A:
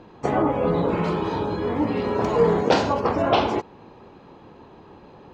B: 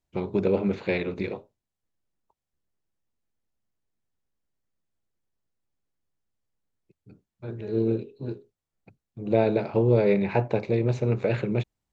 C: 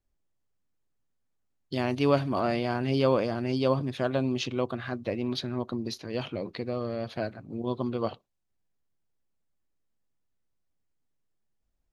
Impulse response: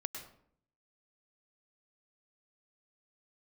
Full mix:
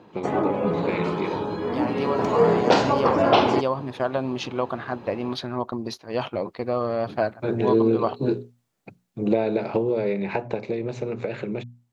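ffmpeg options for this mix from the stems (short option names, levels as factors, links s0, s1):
-filter_complex "[0:a]highpass=110,volume=0.708[s0];[1:a]highpass=150,bandreject=f=60:t=h:w=6,bandreject=f=120:t=h:w=6,bandreject=f=180:t=h:w=6,bandreject=f=240:t=h:w=6,volume=1.41[s1];[2:a]agate=range=0.316:threshold=0.0158:ratio=16:detection=peak,equalizer=f=920:w=0.85:g=12,volume=0.398[s2];[s1][s2]amix=inputs=2:normalize=0,acompressor=threshold=0.0562:ratio=10,volume=1[s3];[s0][s3]amix=inputs=2:normalize=0,dynaudnorm=f=270:g=21:m=3.76"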